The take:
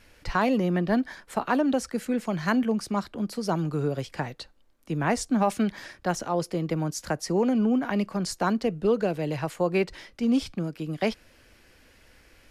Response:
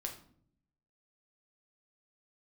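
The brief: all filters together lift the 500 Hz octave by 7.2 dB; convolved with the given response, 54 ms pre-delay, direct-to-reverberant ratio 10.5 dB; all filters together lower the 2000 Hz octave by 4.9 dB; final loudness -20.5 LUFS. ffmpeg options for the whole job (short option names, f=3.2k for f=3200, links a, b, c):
-filter_complex "[0:a]equalizer=f=500:t=o:g=9,equalizer=f=2k:t=o:g=-7.5,asplit=2[a][b];[1:a]atrim=start_sample=2205,adelay=54[c];[b][c]afir=irnorm=-1:irlink=0,volume=-9.5dB[d];[a][d]amix=inputs=2:normalize=0,volume=2.5dB"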